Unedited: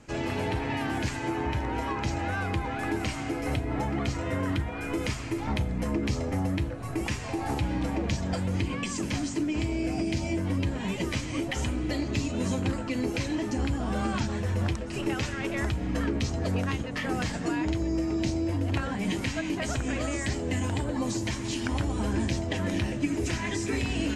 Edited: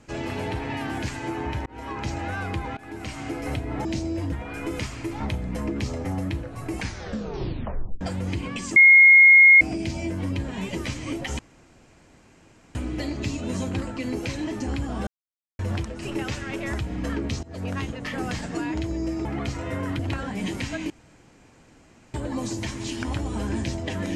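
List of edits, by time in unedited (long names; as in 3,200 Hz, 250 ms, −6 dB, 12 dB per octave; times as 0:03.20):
0:01.66–0:02.11: fade in equal-power
0:02.77–0:03.26: fade in linear, from −18.5 dB
0:03.85–0:04.59: swap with 0:18.16–0:18.63
0:06.99: tape stop 1.29 s
0:09.03–0:09.88: beep over 2,150 Hz −8.5 dBFS
0:11.66: splice in room tone 1.36 s
0:13.98–0:14.50: silence
0:16.34–0:16.66: fade in, from −24 dB
0:19.54–0:20.78: fill with room tone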